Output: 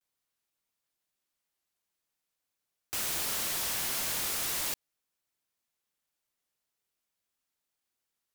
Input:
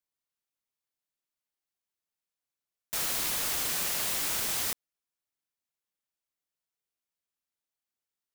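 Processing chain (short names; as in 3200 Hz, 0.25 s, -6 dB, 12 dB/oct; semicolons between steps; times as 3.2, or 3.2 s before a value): wrapped overs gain 33 dB; vibrato 0.43 Hz 45 cents; gain +5.5 dB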